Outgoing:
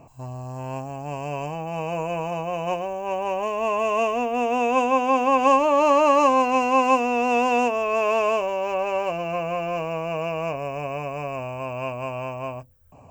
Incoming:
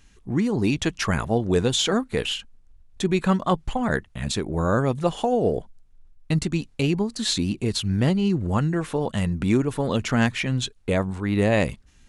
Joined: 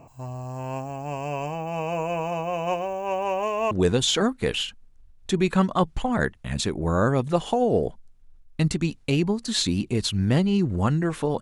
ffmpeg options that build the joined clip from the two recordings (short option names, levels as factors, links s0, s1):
-filter_complex "[0:a]apad=whole_dur=11.41,atrim=end=11.41,atrim=end=3.712[s0];[1:a]atrim=start=1.418:end=9.12[s1];[s0][s1]acrossfade=d=0.004:c1=hsin:c2=hsin"